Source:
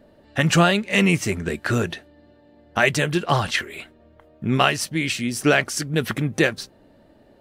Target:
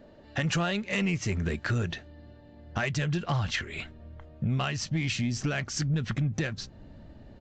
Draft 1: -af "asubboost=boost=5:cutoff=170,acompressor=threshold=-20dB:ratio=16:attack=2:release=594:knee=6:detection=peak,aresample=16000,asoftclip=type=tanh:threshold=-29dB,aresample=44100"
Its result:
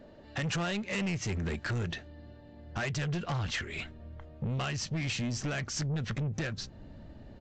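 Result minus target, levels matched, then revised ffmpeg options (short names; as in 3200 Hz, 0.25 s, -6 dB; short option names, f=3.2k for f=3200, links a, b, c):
soft clip: distortion +11 dB
-af "asubboost=boost=5:cutoff=170,acompressor=threshold=-20dB:ratio=16:attack=2:release=594:knee=6:detection=peak,aresample=16000,asoftclip=type=tanh:threshold=-19.5dB,aresample=44100"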